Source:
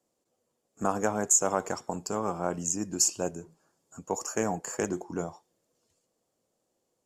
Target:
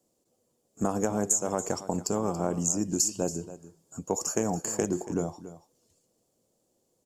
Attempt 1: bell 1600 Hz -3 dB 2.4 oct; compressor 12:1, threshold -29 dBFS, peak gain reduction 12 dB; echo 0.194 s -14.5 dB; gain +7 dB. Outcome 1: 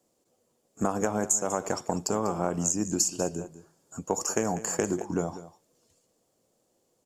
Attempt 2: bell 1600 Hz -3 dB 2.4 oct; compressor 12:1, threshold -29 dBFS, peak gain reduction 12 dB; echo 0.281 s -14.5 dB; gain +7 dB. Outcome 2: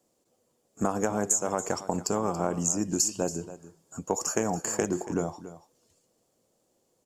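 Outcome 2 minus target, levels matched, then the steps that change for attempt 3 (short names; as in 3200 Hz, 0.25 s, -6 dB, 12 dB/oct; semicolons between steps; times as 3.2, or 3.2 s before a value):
2000 Hz band +4.5 dB
change: bell 1600 Hz -9.5 dB 2.4 oct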